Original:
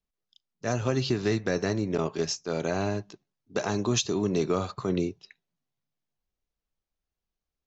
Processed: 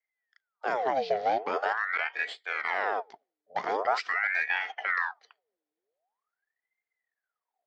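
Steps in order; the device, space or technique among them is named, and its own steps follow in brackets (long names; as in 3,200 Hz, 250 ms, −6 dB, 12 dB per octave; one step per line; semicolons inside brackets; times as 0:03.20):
voice changer toy (ring modulator whose carrier an LFO sweeps 1,200 Hz, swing 75%, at 0.44 Hz; loudspeaker in its box 430–4,200 Hz, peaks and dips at 440 Hz +8 dB, 730 Hz +9 dB, 1,100 Hz −4 dB, 1,900 Hz +4 dB, 2,700 Hz −6 dB, 3,800 Hz −4 dB)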